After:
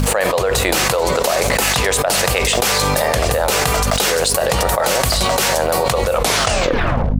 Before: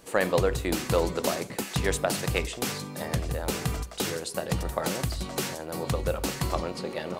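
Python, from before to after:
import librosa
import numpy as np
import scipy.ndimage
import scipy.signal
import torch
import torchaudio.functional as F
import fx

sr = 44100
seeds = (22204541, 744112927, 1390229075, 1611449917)

y = fx.tape_stop_end(x, sr, length_s=1.08)
y = np.sign(y) * np.maximum(np.abs(y) - 10.0 ** (-54.0 / 20.0), 0.0)
y = fx.low_shelf_res(y, sr, hz=400.0, db=-10.5, q=1.5)
y = fx.dmg_buzz(y, sr, base_hz=50.0, harmonics=5, level_db=-51.0, tilt_db=-4, odd_only=False)
y = fx.env_flatten(y, sr, amount_pct=100)
y = F.gain(torch.from_numpy(y), 3.5).numpy()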